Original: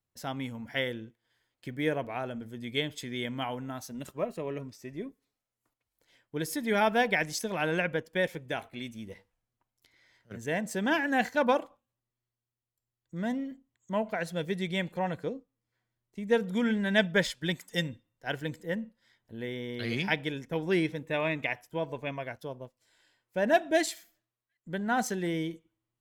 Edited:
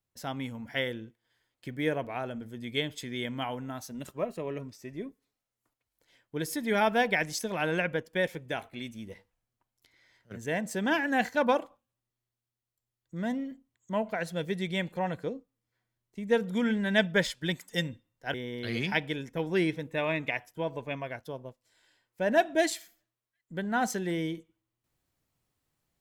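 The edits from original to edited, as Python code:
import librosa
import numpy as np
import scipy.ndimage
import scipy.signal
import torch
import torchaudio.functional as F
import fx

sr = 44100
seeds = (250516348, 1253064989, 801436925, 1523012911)

y = fx.edit(x, sr, fx.cut(start_s=18.34, length_s=1.16), tone=tone)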